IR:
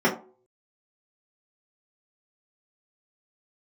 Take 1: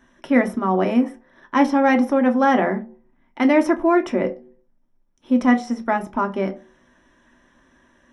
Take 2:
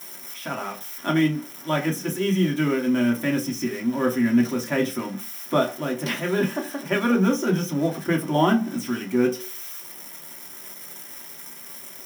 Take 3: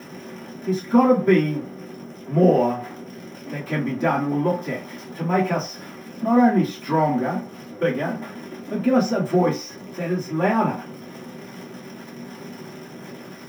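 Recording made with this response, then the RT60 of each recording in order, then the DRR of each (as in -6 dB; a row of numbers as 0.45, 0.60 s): 3; not exponential, not exponential, not exponential; 4.0, -1.5, -8.0 dB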